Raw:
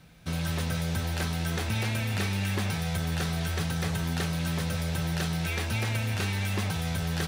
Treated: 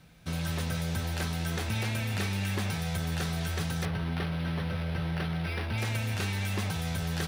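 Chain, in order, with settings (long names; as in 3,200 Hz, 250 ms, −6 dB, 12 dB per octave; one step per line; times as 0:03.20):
0:03.85–0:05.78: linearly interpolated sample-rate reduction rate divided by 6×
level −2 dB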